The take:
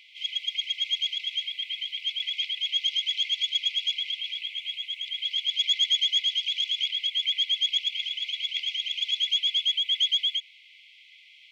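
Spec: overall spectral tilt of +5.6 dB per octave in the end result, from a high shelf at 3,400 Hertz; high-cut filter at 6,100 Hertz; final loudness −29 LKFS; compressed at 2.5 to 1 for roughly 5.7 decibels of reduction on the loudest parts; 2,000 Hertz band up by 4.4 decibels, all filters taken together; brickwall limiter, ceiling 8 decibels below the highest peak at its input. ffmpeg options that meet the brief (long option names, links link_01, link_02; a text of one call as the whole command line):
ffmpeg -i in.wav -af "lowpass=6100,equalizer=frequency=2000:width_type=o:gain=7,highshelf=frequency=3400:gain=-4.5,acompressor=threshold=-30dB:ratio=2.5,volume=3.5dB,alimiter=limit=-23dB:level=0:latency=1" out.wav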